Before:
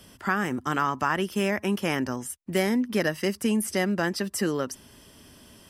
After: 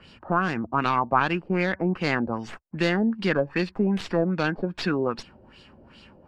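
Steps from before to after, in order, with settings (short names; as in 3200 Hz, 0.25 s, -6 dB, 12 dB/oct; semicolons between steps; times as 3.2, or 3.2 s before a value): tracing distortion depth 0.13 ms; LFO low-pass sine 2.8 Hz 620–4400 Hz; wide varispeed 0.908×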